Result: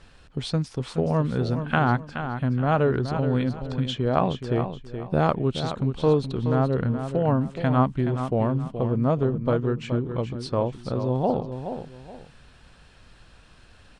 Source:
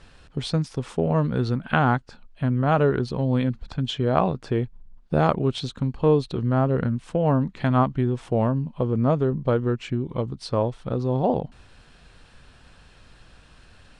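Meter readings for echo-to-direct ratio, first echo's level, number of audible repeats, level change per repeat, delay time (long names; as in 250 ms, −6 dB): −8.5 dB, −9.0 dB, 2, −10.5 dB, 423 ms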